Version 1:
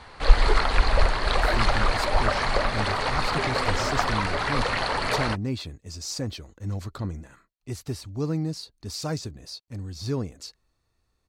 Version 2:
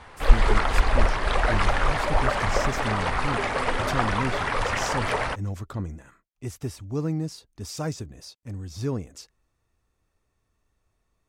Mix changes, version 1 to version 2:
speech: entry −1.25 s
master: add parametric band 4,300 Hz −11 dB 0.3 octaves

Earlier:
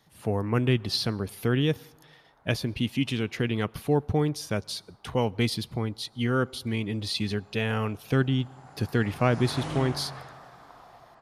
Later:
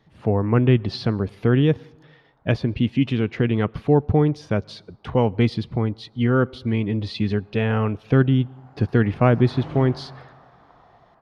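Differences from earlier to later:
speech +8.0 dB
master: add head-to-tape spacing loss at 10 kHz 30 dB

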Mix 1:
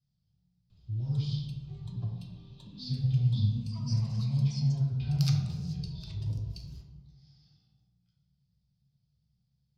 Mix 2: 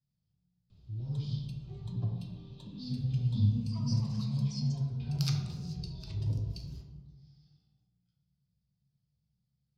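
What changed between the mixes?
speech −6.5 dB
master: add parametric band 360 Hz +5.5 dB 2.1 octaves

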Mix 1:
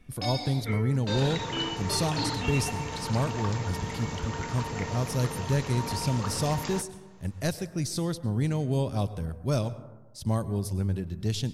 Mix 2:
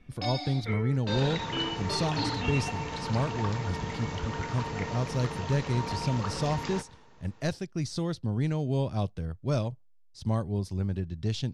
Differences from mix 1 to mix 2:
speech: send off
master: add low-pass filter 5,300 Hz 12 dB per octave

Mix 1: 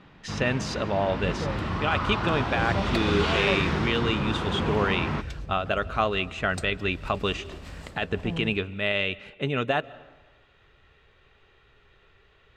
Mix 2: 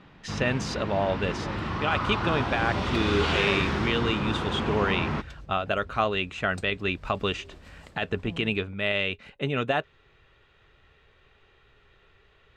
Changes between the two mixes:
second sound −8.0 dB
reverb: off

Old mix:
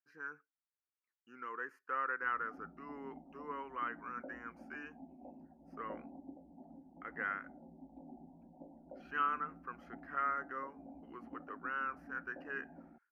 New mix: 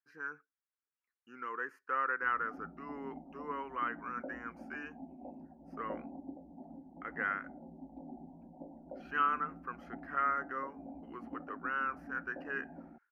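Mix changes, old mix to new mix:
speech +3.5 dB
background +5.0 dB

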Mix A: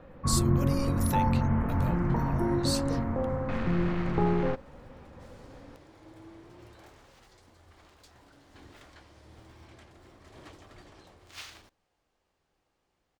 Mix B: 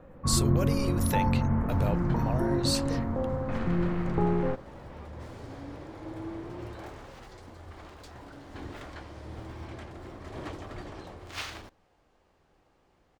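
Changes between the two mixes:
speech +10.0 dB
second sound +12.0 dB
master: add high-shelf EQ 2,300 Hz −9 dB

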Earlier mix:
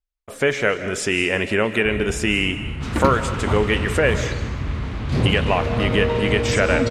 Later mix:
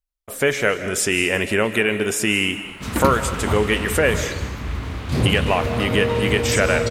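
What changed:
first sound: add Butterworth high-pass 580 Hz
master: remove high-frequency loss of the air 66 metres

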